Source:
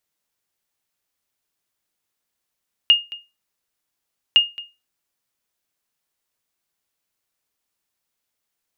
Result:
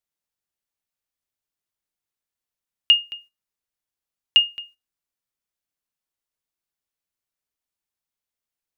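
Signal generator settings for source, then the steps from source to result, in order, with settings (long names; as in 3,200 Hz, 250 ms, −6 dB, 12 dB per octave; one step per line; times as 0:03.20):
ping with an echo 2,840 Hz, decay 0.25 s, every 1.46 s, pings 2, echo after 0.22 s, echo −20 dB −5 dBFS
noise gate −47 dBFS, range −10 dB
low-shelf EQ 100 Hz +6.5 dB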